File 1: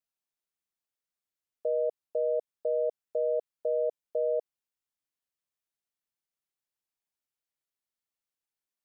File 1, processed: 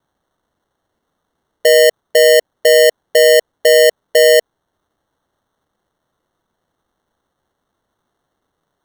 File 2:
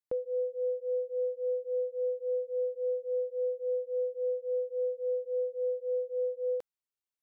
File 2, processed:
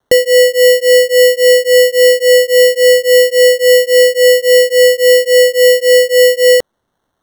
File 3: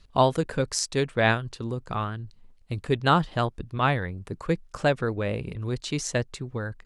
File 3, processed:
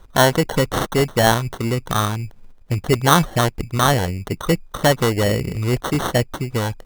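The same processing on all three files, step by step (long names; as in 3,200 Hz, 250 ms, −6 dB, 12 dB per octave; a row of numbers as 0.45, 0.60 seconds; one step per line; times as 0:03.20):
in parallel at +2.5 dB: brickwall limiter −19 dBFS
on the sum: decimation without filtering 18×
normalise the peak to −2 dBFS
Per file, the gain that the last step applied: +12.0, +17.0, +2.5 decibels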